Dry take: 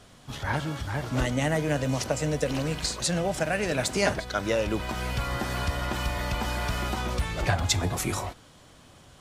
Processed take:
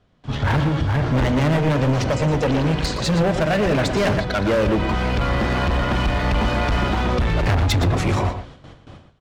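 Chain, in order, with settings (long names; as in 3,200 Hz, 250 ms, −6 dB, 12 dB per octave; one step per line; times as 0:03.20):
mains-hum notches 60/120/180/240/300/360 Hz
noise gate with hold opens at −42 dBFS
low-pass filter 3,700 Hz 12 dB per octave
low-shelf EQ 450 Hz +7.5 dB
gain into a clipping stage and back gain 24.5 dB
slap from a distant wall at 20 metres, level −9 dB
level +8.5 dB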